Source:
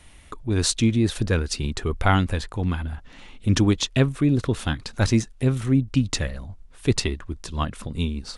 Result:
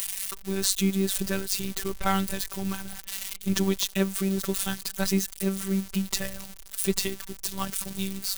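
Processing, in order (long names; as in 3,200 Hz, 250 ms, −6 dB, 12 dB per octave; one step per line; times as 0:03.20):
spike at every zero crossing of −17.5 dBFS
phases set to zero 193 Hz
level −3 dB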